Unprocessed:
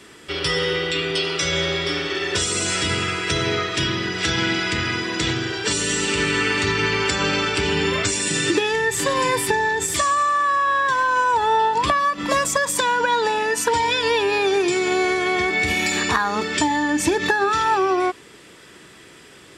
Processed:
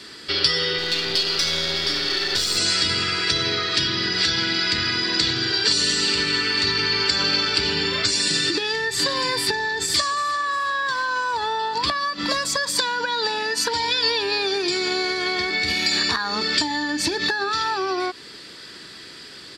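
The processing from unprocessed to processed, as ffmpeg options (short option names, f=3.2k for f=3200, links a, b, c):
-filter_complex "[0:a]asettb=1/sr,asplit=3[a][b][c];[a]atrim=end=0.784[d];[b]atrim=start=0.78:end=2.58,asetpts=PTS-STARTPTS,afade=t=in:d=0.004:c=qsin,afade=t=out:st=1.796:d=0.004:c=qsin,aeval=exprs='clip(val(0),-1,0.0266)':c=same[e];[c]atrim=start=2.576[f];[d][e]acrossfade=d=0.004:c1=hsin:c2=qsin[g];[g][f]acrossfade=d=0.004:c1=qsin:c2=hsin,asplit=2[h][i];[i]afade=t=in:st=9.76:d=0.01,afade=t=out:st=10.39:d=0.01,aecho=0:1:350|700|1050|1400|1750|2100:0.158489|0.0950936|0.0570562|0.0342337|0.0205402|0.0123241[j];[h][j]amix=inputs=2:normalize=0,equalizer=f=250:t=o:w=0.67:g=3,equalizer=f=1.6k:t=o:w=0.67:g=5,equalizer=f=4k:t=o:w=0.67:g=6,acompressor=threshold=-21dB:ratio=6,equalizer=f=4.6k:w=3.4:g=15,volume=-1dB"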